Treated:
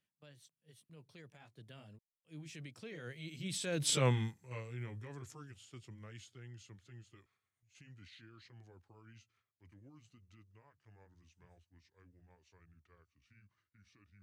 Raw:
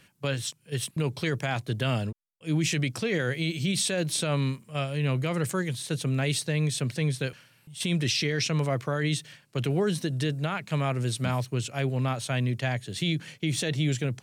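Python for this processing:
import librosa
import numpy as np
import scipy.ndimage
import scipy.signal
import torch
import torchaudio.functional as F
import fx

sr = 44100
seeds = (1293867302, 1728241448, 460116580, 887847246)

y = fx.pitch_glide(x, sr, semitones=-6.5, runs='starting unshifted')
y = fx.doppler_pass(y, sr, speed_mps=22, closest_m=3.3, pass_at_s=4.0)
y = F.gain(torch.from_numpy(y), -1.5).numpy()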